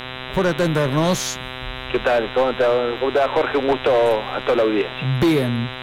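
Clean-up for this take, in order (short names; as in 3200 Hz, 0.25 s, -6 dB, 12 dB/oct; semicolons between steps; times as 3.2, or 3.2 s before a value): de-hum 128.4 Hz, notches 31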